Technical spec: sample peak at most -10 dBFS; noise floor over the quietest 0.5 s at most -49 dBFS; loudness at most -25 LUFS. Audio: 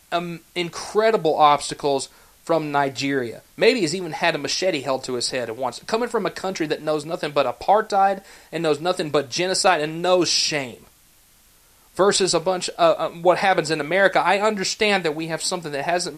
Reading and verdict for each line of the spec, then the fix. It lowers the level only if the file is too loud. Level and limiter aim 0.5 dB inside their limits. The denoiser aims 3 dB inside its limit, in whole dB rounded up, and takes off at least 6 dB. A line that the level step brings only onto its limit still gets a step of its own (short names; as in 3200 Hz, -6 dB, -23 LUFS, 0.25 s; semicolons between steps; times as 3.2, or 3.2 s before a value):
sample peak -3.0 dBFS: fail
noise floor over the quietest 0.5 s -55 dBFS: OK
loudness -21.0 LUFS: fail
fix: gain -4.5 dB; limiter -10.5 dBFS